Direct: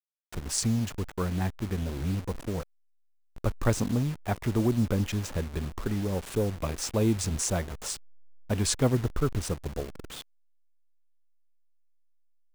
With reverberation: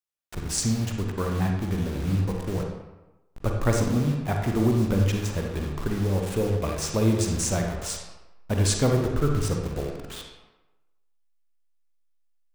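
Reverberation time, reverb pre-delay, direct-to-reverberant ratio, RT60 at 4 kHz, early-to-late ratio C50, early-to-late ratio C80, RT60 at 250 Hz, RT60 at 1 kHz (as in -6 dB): 1.0 s, 38 ms, 1.5 dB, 0.70 s, 3.0 dB, 6.0 dB, 0.95 s, 1.1 s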